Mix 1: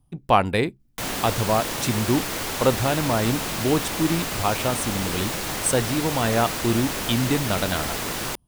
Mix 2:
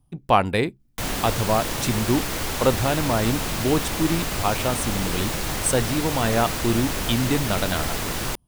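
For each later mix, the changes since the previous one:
background: add low-shelf EQ 100 Hz +11 dB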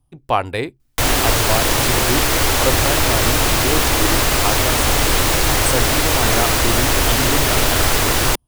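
background +11.5 dB
master: add parametric band 190 Hz −14 dB 0.39 octaves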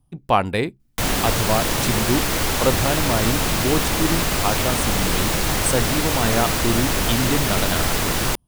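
background −5.5 dB
master: add parametric band 190 Hz +14 dB 0.39 octaves

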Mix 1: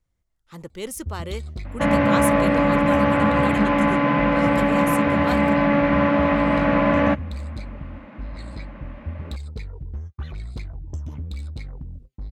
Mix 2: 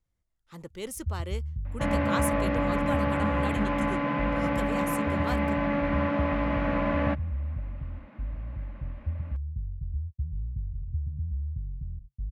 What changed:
speech −5.0 dB
first sound: add inverse Chebyshev low-pass filter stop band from 690 Hz, stop band 70 dB
second sound −9.0 dB

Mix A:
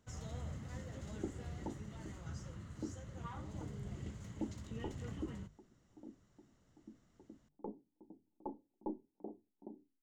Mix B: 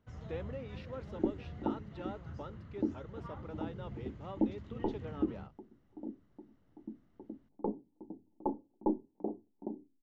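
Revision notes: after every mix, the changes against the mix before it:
speech: unmuted
second sound +11.0 dB
master: add high-frequency loss of the air 250 metres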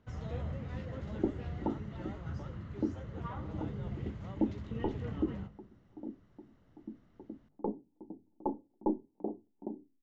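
speech −7.5 dB
first sound +5.0 dB
reverb: on, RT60 1.2 s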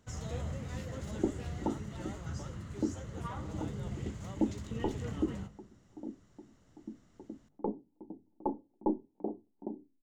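master: remove high-frequency loss of the air 250 metres

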